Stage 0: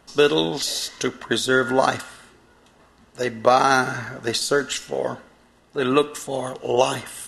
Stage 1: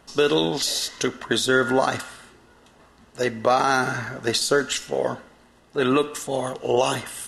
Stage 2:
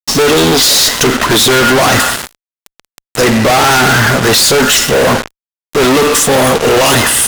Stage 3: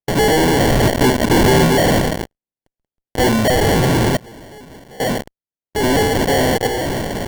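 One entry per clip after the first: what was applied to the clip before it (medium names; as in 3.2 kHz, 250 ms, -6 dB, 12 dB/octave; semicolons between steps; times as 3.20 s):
peak limiter -9.5 dBFS, peak gain reduction 6 dB; trim +1 dB
valve stage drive 13 dB, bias 0.4; fuzz box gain 48 dB, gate -43 dBFS; trim +6 dB
random-step tremolo 1.2 Hz, depth 95%; sample-and-hold 35×; trim -3 dB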